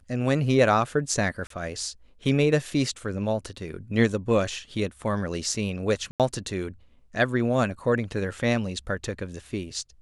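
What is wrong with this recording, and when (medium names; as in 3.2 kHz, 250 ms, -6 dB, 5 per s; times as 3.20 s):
1.47–1.50 s: dropout 33 ms
6.11–6.20 s: dropout 87 ms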